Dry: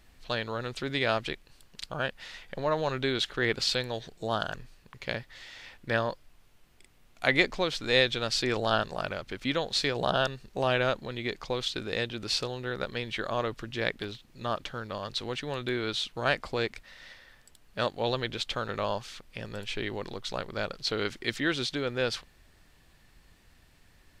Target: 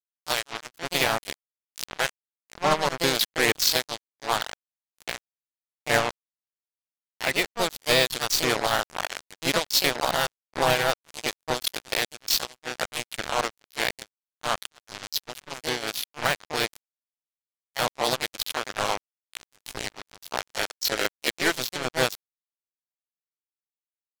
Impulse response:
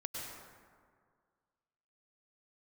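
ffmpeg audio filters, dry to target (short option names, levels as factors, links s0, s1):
-filter_complex "[0:a]acrusher=bits=3:mix=0:aa=0.5,alimiter=limit=0.168:level=0:latency=1:release=461,acontrast=59,asplit=2[s0][s1];[s1]asetrate=55563,aresample=44100,atempo=0.793701,volume=0.631[s2];[s0][s2]amix=inputs=2:normalize=0,highshelf=f=5500:g=4.5,volume=0.794"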